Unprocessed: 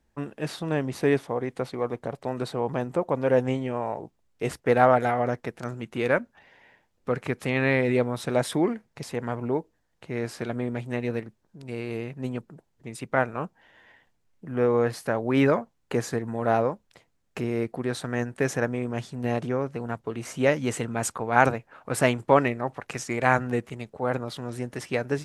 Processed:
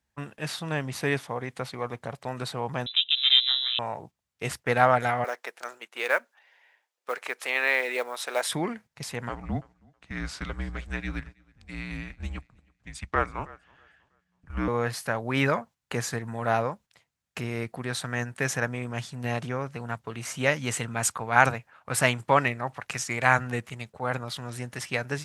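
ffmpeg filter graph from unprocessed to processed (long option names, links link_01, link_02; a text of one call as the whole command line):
ffmpeg -i in.wav -filter_complex "[0:a]asettb=1/sr,asplit=3[link_01][link_02][link_03];[link_01]atrim=end=2.864[link_04];[link_02]atrim=start=2.86:end=3.79,asetpts=PTS-STARTPTS,afade=type=in:duration=0.004:curve=qsin,afade=type=out:start_time=0.926:duration=0.004:curve=qsin,lowpass=frequency=3300:width_type=q:width=0.5098,lowpass=frequency=3300:width_type=q:width=0.6013,lowpass=frequency=3300:width_type=q:width=0.9,lowpass=frequency=3300:width_type=q:width=2.563,afreqshift=-3900,aeval=exprs='val(0)*sin(2*PI*220*n/s)':channel_layout=same[link_05];[link_03]atrim=start=3.786[link_06];[link_04][link_05]acrossfade=duration=0.004:curve1=hsin:curve2=qsin[link_07];[link_07][link_06]acrossfade=duration=0.004:curve1=qsin:curve2=hsin,asettb=1/sr,asplit=3[link_08][link_09][link_10];[link_08]atrim=end=5.244[link_11];[link_09]atrim=start=5.24:end=8.48,asetpts=PTS-STARTPTS,afade=type=in:duration=0.004:curve=qsin,afade=type=out:start_time=3.236:duration=0.004:curve=qsin,highpass=frequency=390:width=0.5412,highpass=frequency=390:width=1.3066,acrusher=bits=8:mode=log:mix=0:aa=0.000001[link_12];[link_10]atrim=start=8.476[link_13];[link_11][link_12]acrossfade=duration=0.004:curve1=hsin:curve2=qsin[link_14];[link_14][link_13]acrossfade=duration=0.004:curve1=qsin:curve2=hsin,asettb=1/sr,asplit=3[link_15][link_16][link_17];[link_15]atrim=end=9.294[link_18];[link_16]atrim=start=9.29:end=14.68,asetpts=PTS-STARTPTS,afade=type=in:duration=0.004:curve=qsin,afade=type=out:start_time=5.386:duration=0.004:curve=qsin,lowpass=7600,afreqshift=-180,aecho=1:1:322|644|966:0.0841|0.0303|0.0109,atrim=end_sample=237699[link_19];[link_17]atrim=start=14.676[link_20];[link_18][link_19]acrossfade=duration=0.004:curve1=hsin:curve2=qsin[link_21];[link_21][link_20]acrossfade=duration=0.004:curve1=qsin:curve2=hsin,highpass=83,agate=range=-7dB:threshold=-43dB:ratio=16:detection=peak,equalizer=frequency=350:width_type=o:width=2.2:gain=-12.5,volume=4.5dB" out.wav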